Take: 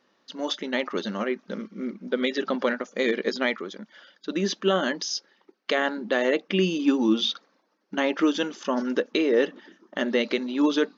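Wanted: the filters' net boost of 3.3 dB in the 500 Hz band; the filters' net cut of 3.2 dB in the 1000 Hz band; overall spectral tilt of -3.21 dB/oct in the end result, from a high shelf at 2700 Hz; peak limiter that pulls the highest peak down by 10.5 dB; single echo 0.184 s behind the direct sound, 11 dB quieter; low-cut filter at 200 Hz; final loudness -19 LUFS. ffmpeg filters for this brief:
-af "highpass=200,equalizer=f=500:t=o:g=5.5,equalizer=f=1k:t=o:g=-7.5,highshelf=f=2.7k:g=6,alimiter=limit=-17.5dB:level=0:latency=1,aecho=1:1:184:0.282,volume=9dB"

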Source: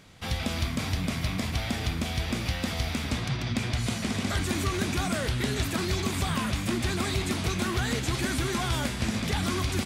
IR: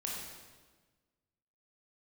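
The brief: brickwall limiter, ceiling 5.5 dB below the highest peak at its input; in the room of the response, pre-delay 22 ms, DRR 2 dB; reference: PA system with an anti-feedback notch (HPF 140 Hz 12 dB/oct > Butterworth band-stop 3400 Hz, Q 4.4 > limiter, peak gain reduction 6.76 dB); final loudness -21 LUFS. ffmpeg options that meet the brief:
-filter_complex "[0:a]alimiter=limit=-23.5dB:level=0:latency=1,asplit=2[a][b];[1:a]atrim=start_sample=2205,adelay=22[c];[b][c]afir=irnorm=-1:irlink=0,volume=-3.5dB[d];[a][d]amix=inputs=2:normalize=0,highpass=140,asuperstop=centerf=3400:order=8:qfactor=4.4,volume=13dB,alimiter=limit=-12dB:level=0:latency=1"

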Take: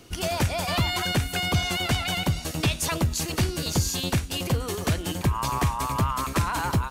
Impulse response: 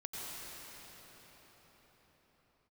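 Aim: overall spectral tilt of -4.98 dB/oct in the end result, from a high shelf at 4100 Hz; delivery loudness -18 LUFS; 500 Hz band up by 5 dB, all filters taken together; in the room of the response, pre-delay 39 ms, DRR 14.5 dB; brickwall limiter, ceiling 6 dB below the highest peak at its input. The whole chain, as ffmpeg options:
-filter_complex "[0:a]equalizer=f=500:t=o:g=7,highshelf=f=4.1k:g=-7,alimiter=limit=-17dB:level=0:latency=1,asplit=2[a][b];[1:a]atrim=start_sample=2205,adelay=39[c];[b][c]afir=irnorm=-1:irlink=0,volume=-15.5dB[d];[a][d]amix=inputs=2:normalize=0,volume=9dB"

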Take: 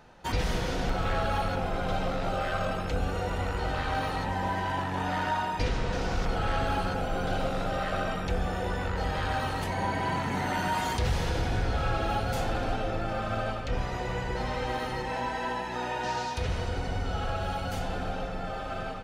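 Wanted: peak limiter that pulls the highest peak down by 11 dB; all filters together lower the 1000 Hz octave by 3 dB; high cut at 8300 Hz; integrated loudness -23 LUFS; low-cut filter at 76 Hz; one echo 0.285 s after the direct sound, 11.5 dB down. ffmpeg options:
-af "highpass=76,lowpass=8.3k,equalizer=f=1k:t=o:g=-4,alimiter=level_in=5.5dB:limit=-24dB:level=0:latency=1,volume=-5.5dB,aecho=1:1:285:0.266,volume=15dB"

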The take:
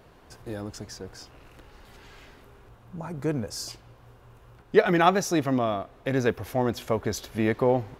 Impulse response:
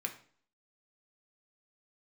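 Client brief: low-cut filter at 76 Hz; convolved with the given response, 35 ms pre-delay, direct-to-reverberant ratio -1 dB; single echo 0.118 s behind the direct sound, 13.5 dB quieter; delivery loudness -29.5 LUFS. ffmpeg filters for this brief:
-filter_complex "[0:a]highpass=76,aecho=1:1:118:0.211,asplit=2[a][b];[1:a]atrim=start_sample=2205,adelay=35[c];[b][c]afir=irnorm=-1:irlink=0,volume=0dB[d];[a][d]amix=inputs=2:normalize=0,volume=-6dB"

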